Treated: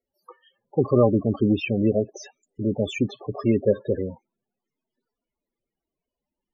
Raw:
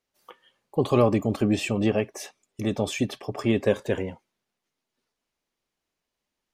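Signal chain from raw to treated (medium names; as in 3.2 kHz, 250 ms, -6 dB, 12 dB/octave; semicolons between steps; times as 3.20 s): loudest bins only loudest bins 16; trim +2.5 dB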